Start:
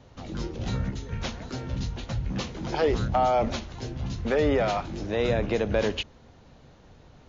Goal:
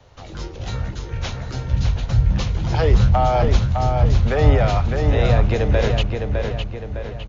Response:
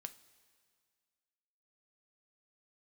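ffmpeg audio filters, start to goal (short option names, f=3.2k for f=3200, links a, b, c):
-filter_complex "[0:a]acrossover=split=150|340|2200[a][b][c][d];[a]dynaudnorm=f=260:g=13:m=12.5dB[e];[b]acrusher=bits=3:mix=0:aa=0.5[f];[e][f][c][d]amix=inputs=4:normalize=0,asplit=2[g][h];[h]adelay=608,lowpass=f=4.3k:p=1,volume=-4.5dB,asplit=2[i][j];[j]adelay=608,lowpass=f=4.3k:p=1,volume=0.49,asplit=2[k][l];[l]adelay=608,lowpass=f=4.3k:p=1,volume=0.49,asplit=2[m][n];[n]adelay=608,lowpass=f=4.3k:p=1,volume=0.49,asplit=2[o][p];[p]adelay=608,lowpass=f=4.3k:p=1,volume=0.49,asplit=2[q][r];[r]adelay=608,lowpass=f=4.3k:p=1,volume=0.49[s];[g][i][k][m][o][q][s]amix=inputs=7:normalize=0,volume=4dB"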